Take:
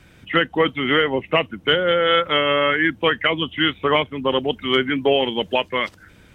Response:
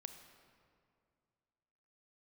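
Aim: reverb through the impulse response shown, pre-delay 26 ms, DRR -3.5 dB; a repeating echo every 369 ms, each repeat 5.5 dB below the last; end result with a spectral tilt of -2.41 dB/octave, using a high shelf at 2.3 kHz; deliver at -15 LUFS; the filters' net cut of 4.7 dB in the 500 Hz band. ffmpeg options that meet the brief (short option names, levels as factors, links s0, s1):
-filter_complex "[0:a]equalizer=f=500:t=o:g=-5,highshelf=f=2300:g=-8,aecho=1:1:369|738|1107|1476|1845|2214|2583:0.531|0.281|0.149|0.079|0.0419|0.0222|0.0118,asplit=2[s0][s1];[1:a]atrim=start_sample=2205,adelay=26[s2];[s1][s2]afir=irnorm=-1:irlink=0,volume=2.51[s3];[s0][s3]amix=inputs=2:normalize=0,volume=1.26"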